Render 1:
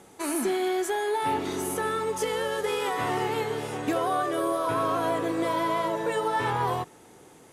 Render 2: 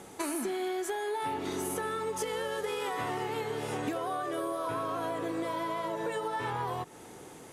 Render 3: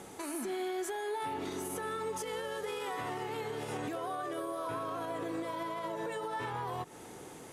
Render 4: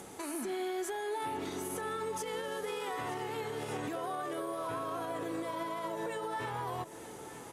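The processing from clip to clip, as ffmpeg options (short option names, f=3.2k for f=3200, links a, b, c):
-af "acompressor=threshold=-34dB:ratio=10,volume=3.5dB"
-af "alimiter=level_in=5dB:limit=-24dB:level=0:latency=1:release=106,volume=-5dB"
-filter_complex "[0:a]aecho=1:1:921:0.188,acrossover=split=6800[a][b];[b]acompressor=mode=upward:threshold=-54dB:ratio=2.5[c];[a][c]amix=inputs=2:normalize=0"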